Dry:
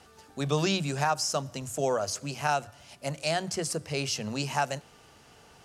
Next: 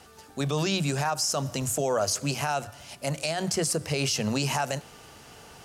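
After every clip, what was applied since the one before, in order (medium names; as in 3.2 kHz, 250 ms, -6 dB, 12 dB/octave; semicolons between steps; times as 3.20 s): treble shelf 12 kHz +9 dB; gain riding 0.5 s; peak limiter -23.5 dBFS, peak gain reduction 10.5 dB; trim +6.5 dB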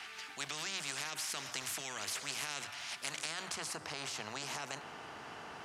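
peaking EQ 540 Hz -13.5 dB 0.4 oct; band-pass sweep 2.2 kHz -> 800 Hz, 3.12–3.76 s; spectrum-flattening compressor 4:1; trim +1 dB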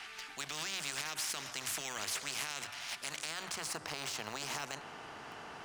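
in parallel at -10 dB: word length cut 6-bit, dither none; on the sum: added noise brown -77 dBFS; peak limiter -25 dBFS, peak gain reduction 5.5 dB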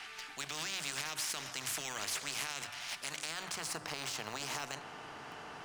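reverberation RT60 0.60 s, pre-delay 7 ms, DRR 15 dB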